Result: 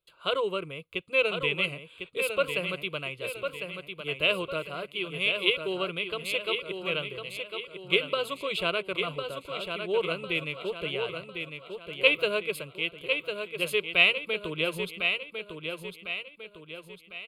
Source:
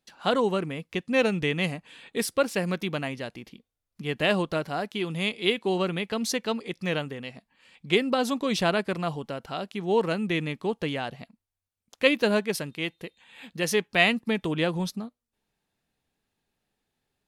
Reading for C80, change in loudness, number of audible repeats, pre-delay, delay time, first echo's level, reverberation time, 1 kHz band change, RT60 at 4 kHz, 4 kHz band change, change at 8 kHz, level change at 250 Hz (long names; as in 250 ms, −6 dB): no reverb audible, −2.0 dB, 4, no reverb audible, 1,052 ms, −6.5 dB, no reverb audible, −5.0 dB, no reverb audible, +2.5 dB, −9.0 dB, −11.0 dB